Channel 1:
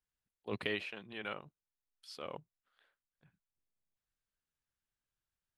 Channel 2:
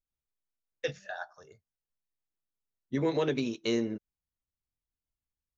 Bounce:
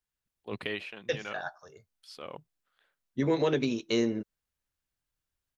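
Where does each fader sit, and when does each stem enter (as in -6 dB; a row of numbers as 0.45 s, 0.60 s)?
+1.5 dB, +2.0 dB; 0.00 s, 0.25 s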